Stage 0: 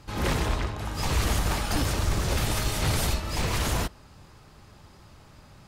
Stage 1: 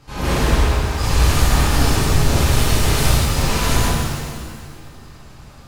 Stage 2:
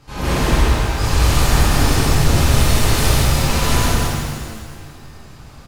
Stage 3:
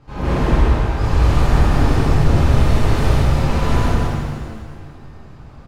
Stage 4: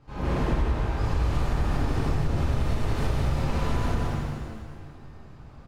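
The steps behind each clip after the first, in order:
shimmer reverb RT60 1.8 s, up +7 st, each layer -8 dB, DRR -8.5 dB; gain -1 dB
echo 0.186 s -4.5 dB
LPF 1100 Hz 6 dB/oct; gain +1 dB
compressor, threshold -13 dBFS, peak gain reduction 7 dB; gain -7 dB

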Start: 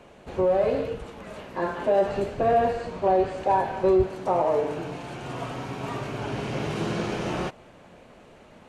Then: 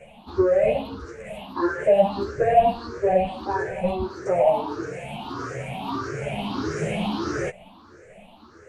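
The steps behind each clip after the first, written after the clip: moving spectral ripple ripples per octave 0.51, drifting +1.6 Hz, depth 23 dB; ensemble effect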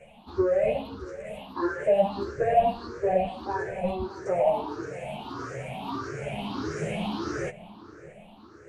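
darkening echo 0.622 s, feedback 55%, low-pass 2200 Hz, level -17 dB; gain -4.5 dB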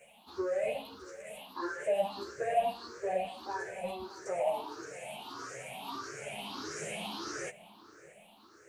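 RIAA curve recording; gain -6.5 dB

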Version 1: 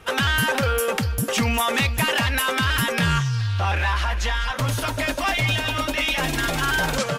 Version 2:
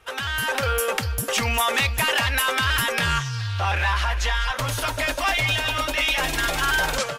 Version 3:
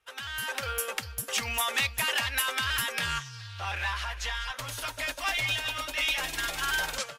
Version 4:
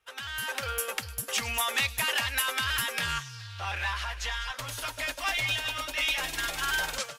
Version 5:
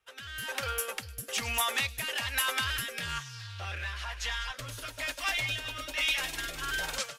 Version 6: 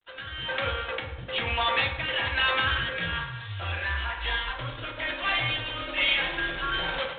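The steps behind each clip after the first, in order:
bell 190 Hz -11 dB 1.6 oct; AGC gain up to 8 dB; gain -6.5 dB
tilt shelf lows -4 dB, about 1200 Hz; upward expander 1.5:1, over -43 dBFS; gain -7 dB
thin delay 0.105 s, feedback 52%, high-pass 4500 Hz, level -13.5 dB
rotary speaker horn 1.1 Hz
reverb RT60 0.90 s, pre-delay 3 ms, DRR -1 dB; gain +3.5 dB; G.726 24 kbps 8000 Hz

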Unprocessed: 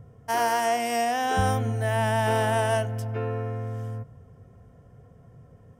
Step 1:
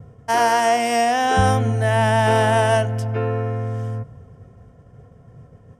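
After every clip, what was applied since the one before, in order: LPF 9300 Hz 12 dB/oct; expander -48 dBFS; gain +7 dB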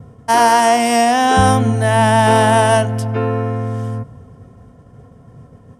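fifteen-band EQ 250 Hz +7 dB, 1000 Hz +5 dB, 4000 Hz +5 dB, 10000 Hz +8 dB; gain +2.5 dB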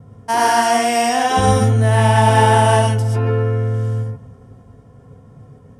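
non-linear reverb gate 0.15 s rising, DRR -1.5 dB; gain -5.5 dB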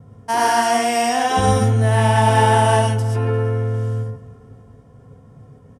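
feedback echo 0.352 s, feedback 48%, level -23.5 dB; gain -2 dB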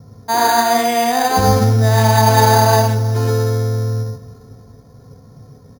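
careless resampling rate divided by 8×, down filtered, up hold; gain +3 dB

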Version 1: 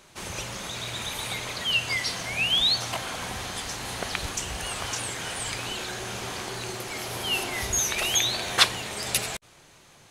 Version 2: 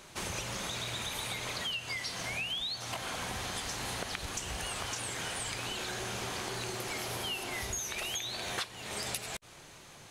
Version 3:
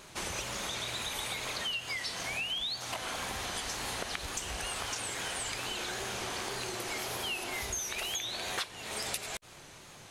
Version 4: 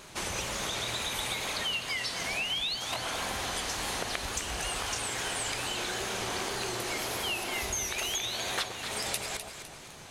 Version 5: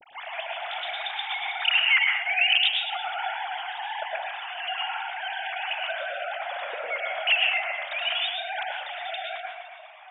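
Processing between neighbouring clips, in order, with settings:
compressor 16:1, threshold -35 dBFS, peak gain reduction 23 dB; gain +1.5 dB
dynamic EQ 130 Hz, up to -6 dB, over -56 dBFS, Q 0.93; wow and flutter 58 cents; gain +1 dB
echo with dull and thin repeats by turns 0.127 s, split 1000 Hz, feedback 63%, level -5 dB; gain +2.5 dB
sine-wave speech; reverb RT60 0.60 s, pre-delay 98 ms, DRR -0.5 dB; gain +2.5 dB

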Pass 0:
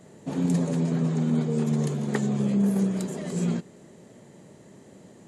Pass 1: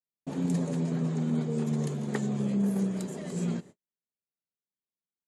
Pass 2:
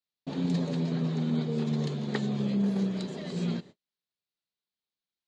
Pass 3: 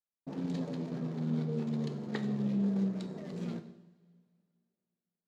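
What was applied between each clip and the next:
gate -41 dBFS, range -54 dB; gain -4.5 dB
synth low-pass 4100 Hz, resonance Q 3.1
Wiener smoothing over 15 samples; two-slope reverb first 0.84 s, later 2.7 s, from -18 dB, DRR 8 dB; gain -5.5 dB

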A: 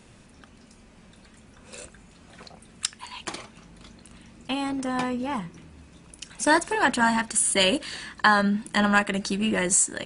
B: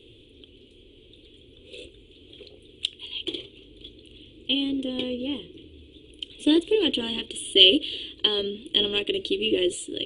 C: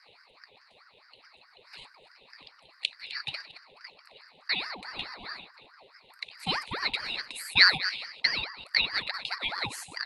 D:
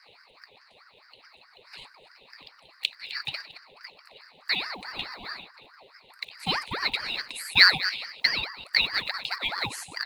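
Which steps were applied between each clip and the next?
EQ curve 120 Hz 0 dB, 190 Hz -20 dB, 290 Hz +6 dB, 450 Hz +9 dB, 670 Hz -18 dB, 980 Hz -22 dB, 1700 Hz -24 dB, 3300 Hz +15 dB, 5200 Hz -23 dB, 13000 Hz -9 dB
reverse delay 0.149 s, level -13.5 dB; graphic EQ 125/250/500/2000/4000/8000 Hz -11/-9/-11/-6/+4/-5 dB; ring modulator with a swept carrier 1000 Hz, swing 55%, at 4.7 Hz
block floating point 7-bit; gain +2.5 dB

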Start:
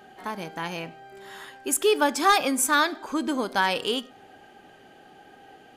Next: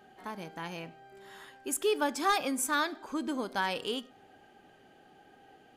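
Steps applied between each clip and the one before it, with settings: low shelf 360 Hz +3 dB; gain -8.5 dB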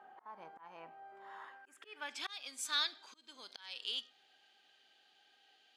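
auto swell 0.451 s; band-pass sweep 1000 Hz -> 4000 Hz, 1.43–2.41; pre-echo 51 ms -22 dB; gain +6 dB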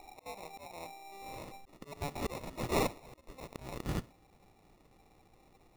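sample-and-hold 28×; wrapped overs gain 26.5 dB; gain +5.5 dB

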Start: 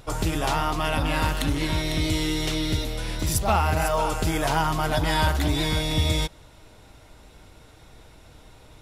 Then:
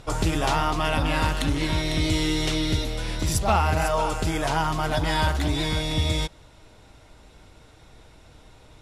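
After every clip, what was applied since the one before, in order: LPF 10000 Hz 12 dB/oct; vocal rider 2 s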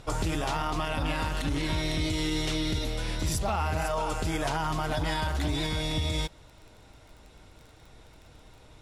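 limiter -17.5 dBFS, peak gain reduction 8.5 dB; crackle 20/s -40 dBFS; gain -2.5 dB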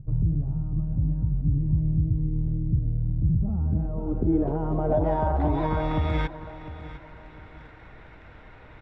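low-pass sweep 140 Hz -> 1900 Hz, 3.2–6.46; feedback echo 0.703 s, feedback 34%, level -15 dB; gain +4.5 dB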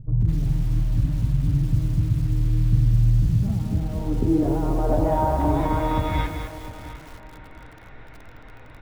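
on a send at -8.5 dB: reverb RT60 0.25 s, pre-delay 3 ms; on the sum: lo-fi delay 0.206 s, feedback 35%, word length 7-bit, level -6 dB; gain +1.5 dB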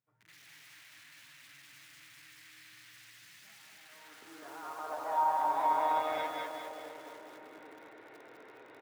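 high-pass sweep 1900 Hz -> 390 Hz, 3.77–7.46; feedback echo 0.199 s, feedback 31%, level -4 dB; gain -9 dB

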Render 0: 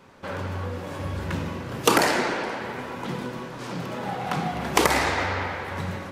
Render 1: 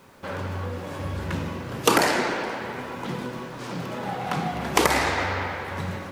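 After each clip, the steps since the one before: requantised 10-bit, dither none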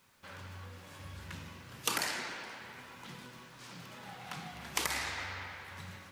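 passive tone stack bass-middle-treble 5-5-5; gain -2 dB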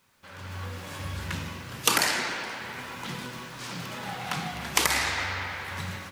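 AGC gain up to 12.5 dB

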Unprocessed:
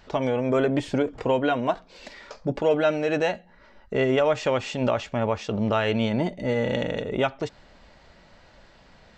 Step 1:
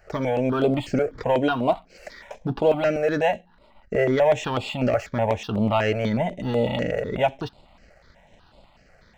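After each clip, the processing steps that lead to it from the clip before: bell 730 Hz +4.5 dB 0.88 oct; sample leveller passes 1; step phaser 8.1 Hz 970–6000 Hz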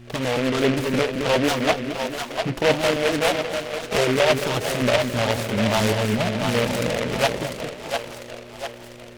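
buzz 120 Hz, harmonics 3, -44 dBFS -4 dB/oct; split-band echo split 500 Hz, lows 0.219 s, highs 0.698 s, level -5 dB; noise-modulated delay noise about 1900 Hz, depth 0.14 ms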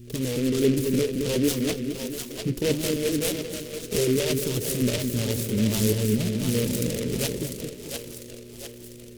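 EQ curve 430 Hz 0 dB, 710 Hz -22 dB, 1500 Hz -16 dB, 12000 Hz +8 dB

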